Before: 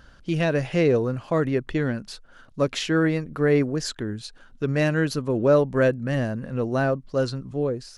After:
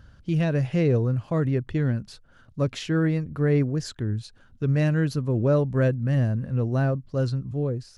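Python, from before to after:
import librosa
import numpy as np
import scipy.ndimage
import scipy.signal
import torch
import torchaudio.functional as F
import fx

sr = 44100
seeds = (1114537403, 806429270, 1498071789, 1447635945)

y = fx.peak_eq(x, sr, hz=97.0, db=15.0, octaves=1.9)
y = F.gain(torch.from_numpy(y), -6.5).numpy()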